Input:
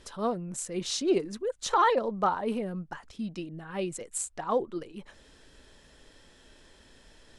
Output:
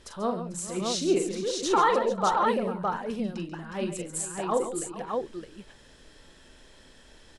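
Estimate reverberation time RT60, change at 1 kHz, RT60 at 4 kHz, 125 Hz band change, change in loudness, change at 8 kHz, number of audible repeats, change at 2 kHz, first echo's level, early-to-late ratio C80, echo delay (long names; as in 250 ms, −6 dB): no reverb audible, +2.5 dB, no reverb audible, +2.5 dB, +2.5 dB, +2.5 dB, 4, +2.5 dB, −7.0 dB, no reverb audible, 42 ms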